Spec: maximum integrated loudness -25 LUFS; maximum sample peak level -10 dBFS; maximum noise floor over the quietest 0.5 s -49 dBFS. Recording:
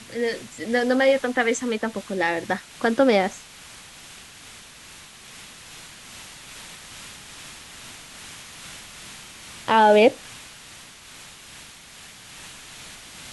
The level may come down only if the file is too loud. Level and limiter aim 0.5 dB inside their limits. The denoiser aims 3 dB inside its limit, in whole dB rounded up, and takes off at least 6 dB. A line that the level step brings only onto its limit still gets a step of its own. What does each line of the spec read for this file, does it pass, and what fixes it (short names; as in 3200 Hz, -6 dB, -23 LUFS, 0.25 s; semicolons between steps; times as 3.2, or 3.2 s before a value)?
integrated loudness -21.5 LUFS: fail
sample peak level -5.0 dBFS: fail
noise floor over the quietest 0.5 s -45 dBFS: fail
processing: denoiser 6 dB, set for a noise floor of -45 dBFS; gain -4 dB; limiter -10.5 dBFS